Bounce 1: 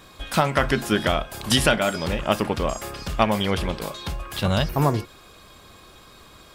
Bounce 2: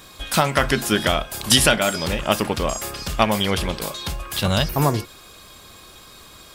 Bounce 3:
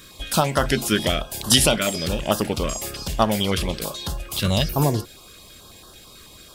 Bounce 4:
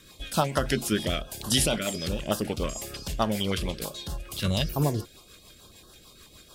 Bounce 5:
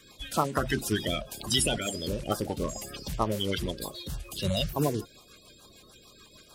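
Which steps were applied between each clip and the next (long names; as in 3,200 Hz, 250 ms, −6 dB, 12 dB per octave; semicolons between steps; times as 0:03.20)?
high-shelf EQ 3,500 Hz +8.5 dB; level +1 dB
notch on a step sequencer 9.1 Hz 810–2,300 Hz
rotating-speaker cabinet horn 6.7 Hz; level −4 dB
spectral magnitudes quantised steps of 30 dB; level −1.5 dB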